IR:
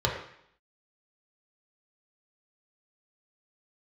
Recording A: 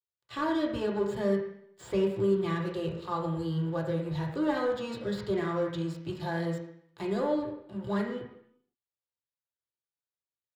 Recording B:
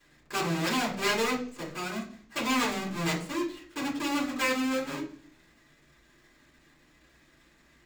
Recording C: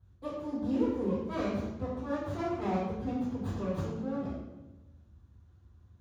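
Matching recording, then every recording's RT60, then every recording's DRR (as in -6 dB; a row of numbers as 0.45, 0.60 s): A; 0.70, 0.50, 1.1 s; -2.0, -7.0, -15.0 dB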